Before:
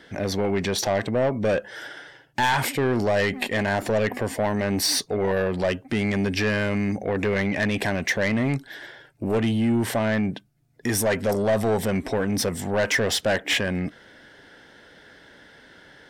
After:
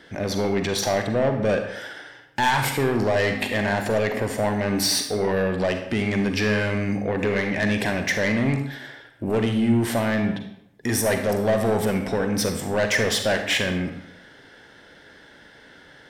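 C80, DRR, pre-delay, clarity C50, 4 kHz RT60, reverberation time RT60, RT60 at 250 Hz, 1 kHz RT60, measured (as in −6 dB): 9.5 dB, 5.0 dB, 37 ms, 6.5 dB, 0.60 s, 0.80 s, 0.75 s, 0.75 s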